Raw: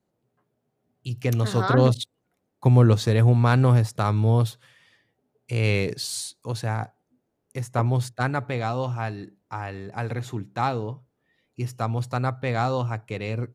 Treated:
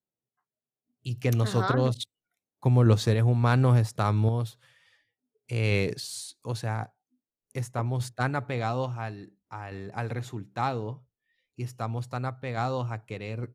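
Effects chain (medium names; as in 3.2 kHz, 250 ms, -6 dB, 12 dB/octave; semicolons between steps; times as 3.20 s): spectral noise reduction 19 dB; random-step tremolo; trim -1.5 dB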